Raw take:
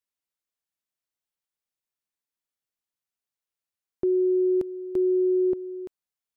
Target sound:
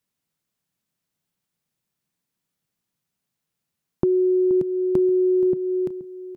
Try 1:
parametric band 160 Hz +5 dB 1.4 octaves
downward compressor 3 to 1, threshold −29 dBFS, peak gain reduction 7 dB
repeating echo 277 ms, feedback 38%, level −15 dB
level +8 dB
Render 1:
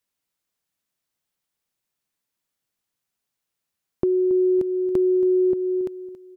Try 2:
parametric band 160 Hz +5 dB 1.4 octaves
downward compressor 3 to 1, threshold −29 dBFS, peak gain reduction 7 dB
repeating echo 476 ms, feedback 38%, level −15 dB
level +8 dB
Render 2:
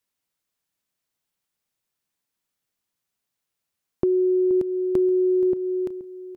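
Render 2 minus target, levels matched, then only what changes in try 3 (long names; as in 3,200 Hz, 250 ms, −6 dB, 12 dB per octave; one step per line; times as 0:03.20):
125 Hz band −5.0 dB
change: parametric band 160 Hz +16.5 dB 1.4 octaves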